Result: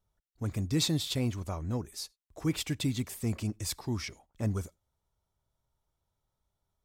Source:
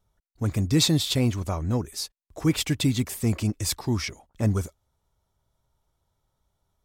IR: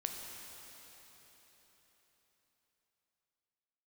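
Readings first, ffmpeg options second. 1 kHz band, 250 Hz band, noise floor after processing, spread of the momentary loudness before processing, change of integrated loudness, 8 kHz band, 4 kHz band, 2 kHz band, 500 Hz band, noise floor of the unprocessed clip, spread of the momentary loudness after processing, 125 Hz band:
−7.5 dB, −7.5 dB, −85 dBFS, 11 LU, −7.5 dB, −7.5 dB, −7.5 dB, −7.5 dB, −7.5 dB, −78 dBFS, 11 LU, −7.5 dB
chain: -filter_complex "[0:a]asplit=2[link_01][link_02];[1:a]atrim=start_sample=2205,atrim=end_sample=4410[link_03];[link_02][link_03]afir=irnorm=-1:irlink=0,volume=-19dB[link_04];[link_01][link_04]amix=inputs=2:normalize=0,volume=-8.5dB"

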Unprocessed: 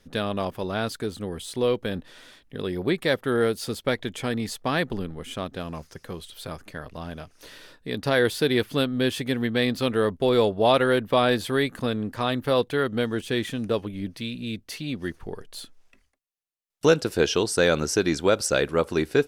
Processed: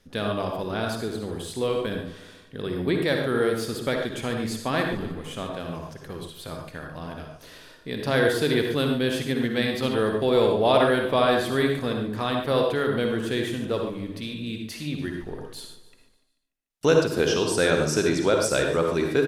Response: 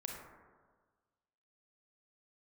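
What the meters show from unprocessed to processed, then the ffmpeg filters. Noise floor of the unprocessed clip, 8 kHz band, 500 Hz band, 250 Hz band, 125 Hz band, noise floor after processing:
−63 dBFS, −0.5 dB, +0.5 dB, +0.5 dB, +0.5 dB, −54 dBFS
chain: -filter_complex "[0:a]aecho=1:1:146|292|438|584|730:0.168|0.0856|0.0437|0.0223|0.0114[link_01];[1:a]atrim=start_sample=2205,atrim=end_sample=3969,asetrate=28224,aresample=44100[link_02];[link_01][link_02]afir=irnorm=-1:irlink=0"

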